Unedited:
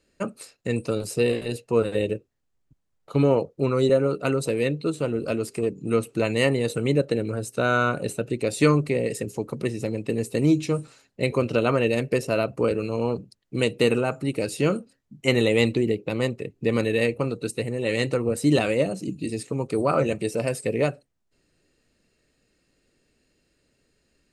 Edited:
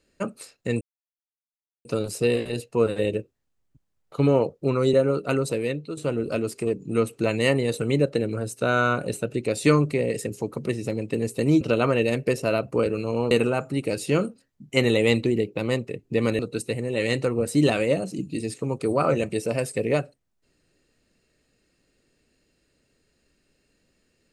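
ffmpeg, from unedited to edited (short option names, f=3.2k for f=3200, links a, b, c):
-filter_complex "[0:a]asplit=6[a][b][c][d][e][f];[a]atrim=end=0.81,asetpts=PTS-STARTPTS,afade=t=out:st=0.806:d=0.004:c=hsin,apad=pad_dur=1.04[g];[b]atrim=start=0.81:end=4.93,asetpts=PTS-STARTPTS,afade=t=in:d=0.004:c=hsin,afade=t=out:st=3.59:d=0.53:silence=0.334965[h];[c]atrim=start=4.93:end=10.572,asetpts=PTS-STARTPTS,afade=t=in:d=0.004:c=hsin:silence=0.334965[i];[d]atrim=start=11.458:end=13.162[j];[e]atrim=start=13.818:end=16.902[k];[f]atrim=start=17.278[l];[g][h][i]concat=n=3:v=0:a=1[m];[m][j]acrossfade=d=0.004:c1=hsin:c2=hsin[n];[n][k]acrossfade=d=0.004:c1=hsin:c2=hsin[o];[o][l]acrossfade=d=0.004:c1=hsin:c2=hsin"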